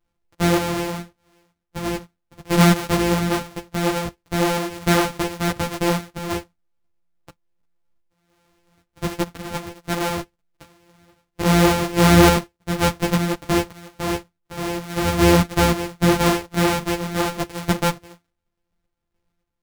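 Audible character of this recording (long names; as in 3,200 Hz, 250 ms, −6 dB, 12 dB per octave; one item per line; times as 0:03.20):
a buzz of ramps at a fixed pitch in blocks of 256 samples
sample-and-hold tremolo 3.5 Hz
a shimmering, thickened sound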